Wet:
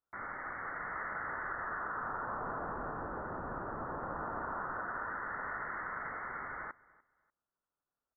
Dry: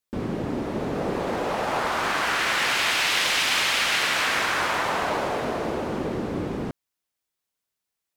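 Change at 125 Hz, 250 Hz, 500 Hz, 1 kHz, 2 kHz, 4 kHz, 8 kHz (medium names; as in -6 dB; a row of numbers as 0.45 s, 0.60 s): -15.5 dB, -18.5 dB, -16.5 dB, -11.0 dB, -15.0 dB, under -40 dB, under -40 dB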